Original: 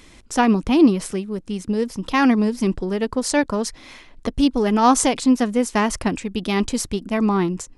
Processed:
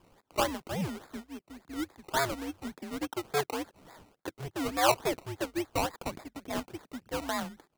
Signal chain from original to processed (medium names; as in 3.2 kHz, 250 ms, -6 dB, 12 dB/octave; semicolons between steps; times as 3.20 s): mistuned SSB -150 Hz 450–2700 Hz; decimation with a swept rate 21×, swing 60% 3.5 Hz; trim -8 dB